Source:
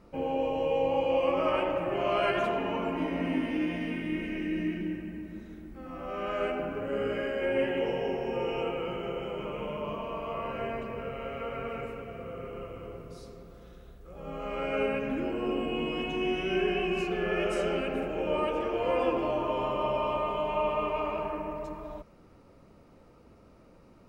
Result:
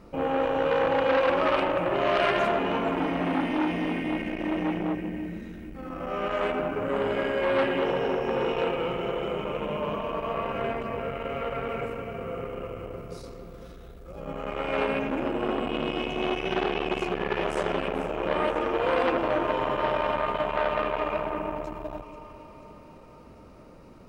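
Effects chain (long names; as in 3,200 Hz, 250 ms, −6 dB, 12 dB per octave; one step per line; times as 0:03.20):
delay that swaps between a low-pass and a high-pass 241 ms, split 810 Hz, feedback 73%, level −13.5 dB
saturating transformer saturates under 1,500 Hz
level +6.5 dB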